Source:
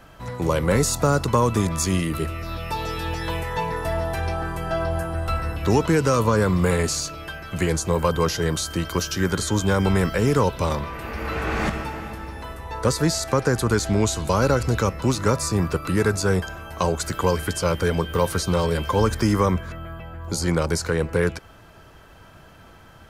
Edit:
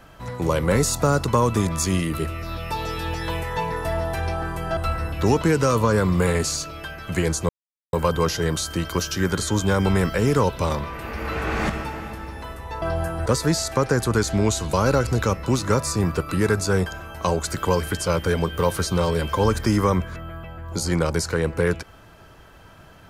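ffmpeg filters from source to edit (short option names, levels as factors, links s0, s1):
-filter_complex "[0:a]asplit=5[s0][s1][s2][s3][s4];[s0]atrim=end=4.772[s5];[s1]atrim=start=5.208:end=7.93,asetpts=PTS-STARTPTS,afade=t=out:st=2.718:d=0.004:c=hsin,apad=pad_dur=0.44[s6];[s2]atrim=start=7.93:end=12.822,asetpts=PTS-STARTPTS,afade=t=in:d=0.004:c=hsin[s7];[s3]atrim=start=4.768:end=5.212[s8];[s4]atrim=start=12.818[s9];[s6][s7]concat=n=2:v=0:a=1[s10];[s5][s10]acrossfade=d=0.004:c1=hsin:c2=hsin[s11];[s11][s8]acrossfade=d=0.004:c1=hsin:c2=hsin[s12];[s12][s9]acrossfade=d=0.004:c1=hsin:c2=hsin"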